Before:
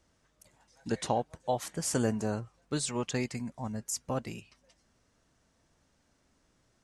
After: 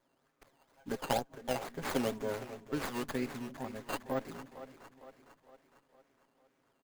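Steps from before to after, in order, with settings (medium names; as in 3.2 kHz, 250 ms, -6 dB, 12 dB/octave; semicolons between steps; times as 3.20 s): comb 7.4 ms, depth 86%; decimation with a swept rate 9×, swing 160% 2.1 Hz; high-pass 230 Hz 12 dB/octave; band-stop 5.6 kHz; two-band feedback delay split 300 Hz, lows 267 ms, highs 457 ms, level -12.5 dB; sliding maximum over 9 samples; trim -4 dB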